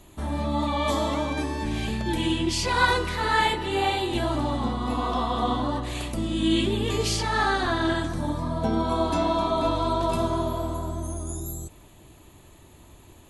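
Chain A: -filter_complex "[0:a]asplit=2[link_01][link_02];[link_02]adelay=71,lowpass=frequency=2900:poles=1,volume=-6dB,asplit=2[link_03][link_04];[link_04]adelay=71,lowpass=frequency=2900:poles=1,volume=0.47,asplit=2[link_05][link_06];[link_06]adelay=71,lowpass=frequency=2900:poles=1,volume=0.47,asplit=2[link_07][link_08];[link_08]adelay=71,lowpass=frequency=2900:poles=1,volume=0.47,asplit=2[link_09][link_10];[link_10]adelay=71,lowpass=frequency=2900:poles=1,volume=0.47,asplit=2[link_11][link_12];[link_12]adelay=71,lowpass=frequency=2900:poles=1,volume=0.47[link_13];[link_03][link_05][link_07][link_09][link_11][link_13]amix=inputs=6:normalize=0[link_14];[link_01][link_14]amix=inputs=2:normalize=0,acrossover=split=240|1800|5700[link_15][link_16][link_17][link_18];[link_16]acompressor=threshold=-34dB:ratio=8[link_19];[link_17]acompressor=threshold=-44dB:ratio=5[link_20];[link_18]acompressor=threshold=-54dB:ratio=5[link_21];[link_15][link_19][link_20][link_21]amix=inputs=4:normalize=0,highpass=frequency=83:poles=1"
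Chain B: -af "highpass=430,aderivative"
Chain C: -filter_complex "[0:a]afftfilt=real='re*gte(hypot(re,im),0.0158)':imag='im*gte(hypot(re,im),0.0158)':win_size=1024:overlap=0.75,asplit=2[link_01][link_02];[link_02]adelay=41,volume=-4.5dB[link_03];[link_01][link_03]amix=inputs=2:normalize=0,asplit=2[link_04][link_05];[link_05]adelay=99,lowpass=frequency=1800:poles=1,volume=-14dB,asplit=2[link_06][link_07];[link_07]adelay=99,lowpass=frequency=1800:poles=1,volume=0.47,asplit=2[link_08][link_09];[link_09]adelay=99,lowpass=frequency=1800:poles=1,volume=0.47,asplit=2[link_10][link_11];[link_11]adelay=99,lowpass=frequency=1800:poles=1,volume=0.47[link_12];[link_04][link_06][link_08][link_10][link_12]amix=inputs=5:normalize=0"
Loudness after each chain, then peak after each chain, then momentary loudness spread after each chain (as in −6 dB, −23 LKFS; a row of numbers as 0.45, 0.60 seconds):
−32.0, −38.0, −24.5 LKFS; −17.0, −18.0, −7.5 dBFS; 13, 17, 8 LU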